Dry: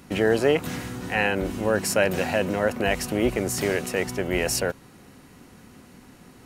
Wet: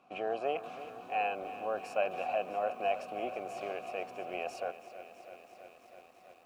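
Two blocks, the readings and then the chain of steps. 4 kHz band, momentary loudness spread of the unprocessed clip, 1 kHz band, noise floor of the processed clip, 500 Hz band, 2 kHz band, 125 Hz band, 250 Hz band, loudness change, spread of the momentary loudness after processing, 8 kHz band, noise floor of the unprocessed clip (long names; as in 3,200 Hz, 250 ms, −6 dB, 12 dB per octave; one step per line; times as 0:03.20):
−17.0 dB, 6 LU, −3.0 dB, −60 dBFS, −11.5 dB, −15.5 dB, −28.5 dB, −21.5 dB, −12.0 dB, 19 LU, below −25 dB, −50 dBFS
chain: formant filter a
feedback echo at a low word length 327 ms, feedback 80%, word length 10 bits, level −14 dB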